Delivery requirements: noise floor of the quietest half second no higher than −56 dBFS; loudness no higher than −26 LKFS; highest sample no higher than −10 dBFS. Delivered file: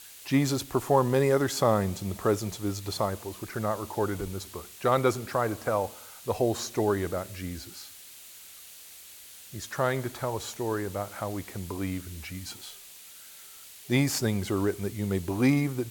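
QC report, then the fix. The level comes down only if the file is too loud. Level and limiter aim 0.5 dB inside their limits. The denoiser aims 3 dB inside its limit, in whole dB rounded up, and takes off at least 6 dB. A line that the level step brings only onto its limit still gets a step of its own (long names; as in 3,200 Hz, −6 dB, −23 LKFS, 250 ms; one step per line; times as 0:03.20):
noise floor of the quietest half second −48 dBFS: out of spec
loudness −29.0 LKFS: in spec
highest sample −9.0 dBFS: out of spec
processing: broadband denoise 11 dB, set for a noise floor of −48 dBFS
brickwall limiter −10.5 dBFS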